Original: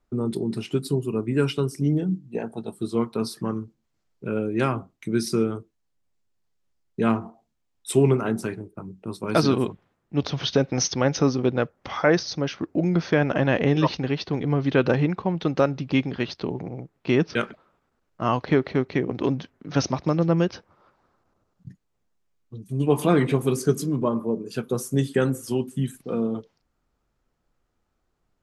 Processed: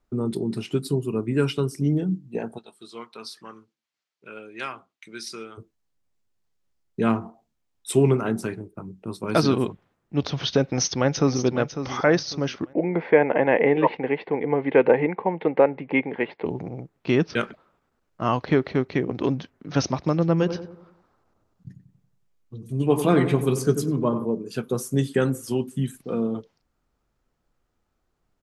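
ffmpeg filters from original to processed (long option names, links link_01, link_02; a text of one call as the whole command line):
ffmpeg -i in.wav -filter_complex "[0:a]asplit=3[link_01][link_02][link_03];[link_01]afade=type=out:start_time=2.57:duration=0.02[link_04];[link_02]bandpass=frequency=3100:width_type=q:width=0.73,afade=type=in:start_time=2.57:duration=0.02,afade=type=out:start_time=5.57:duration=0.02[link_05];[link_03]afade=type=in:start_time=5.57:duration=0.02[link_06];[link_04][link_05][link_06]amix=inputs=3:normalize=0,asplit=2[link_07][link_08];[link_08]afade=type=in:start_time=10.62:duration=0.01,afade=type=out:start_time=11.45:duration=0.01,aecho=0:1:550|1100|1650:0.316228|0.0948683|0.0284605[link_09];[link_07][link_09]amix=inputs=2:normalize=0,asettb=1/sr,asplit=3[link_10][link_11][link_12];[link_10]atrim=end=12.734[link_13];[link_11]atrim=start=12.73:end=16.46,asetpts=PTS-STARTPTS,afade=type=in:duration=0.004:curve=qsin,afade=type=out:start_time=3.726:duration=0.004:curve=qsin,highpass=250,equalizer=frequency=470:width_type=q:width=4:gain=9,equalizer=frequency=870:width_type=q:width=4:gain=9,equalizer=frequency=1300:width_type=q:width=4:gain=-8,equalizer=frequency=2100:width_type=q:width=4:gain=10,lowpass=frequency=2400:width=0.5412,lowpass=frequency=2400:width=1.3066[link_14];[link_12]atrim=start=16.456[link_15];[link_13][link_14]acrossfade=duration=0.004:curve1=hsin:curve2=qsin[link_16];[link_16][link_15]acrossfade=duration=0.004:curve1=qsin:curve2=hsin,asplit=3[link_17][link_18][link_19];[link_17]afade=type=out:start_time=20.39:duration=0.02[link_20];[link_18]asplit=2[link_21][link_22];[link_22]adelay=92,lowpass=frequency=1100:poles=1,volume=-8dB,asplit=2[link_23][link_24];[link_24]adelay=92,lowpass=frequency=1100:poles=1,volume=0.48,asplit=2[link_25][link_26];[link_26]adelay=92,lowpass=frequency=1100:poles=1,volume=0.48,asplit=2[link_27][link_28];[link_28]adelay=92,lowpass=frequency=1100:poles=1,volume=0.48,asplit=2[link_29][link_30];[link_30]adelay=92,lowpass=frequency=1100:poles=1,volume=0.48,asplit=2[link_31][link_32];[link_32]adelay=92,lowpass=frequency=1100:poles=1,volume=0.48[link_33];[link_21][link_23][link_25][link_27][link_29][link_31][link_33]amix=inputs=7:normalize=0,afade=type=in:start_time=20.39:duration=0.02,afade=type=out:start_time=24.24:duration=0.02[link_34];[link_19]afade=type=in:start_time=24.24:duration=0.02[link_35];[link_20][link_34][link_35]amix=inputs=3:normalize=0" out.wav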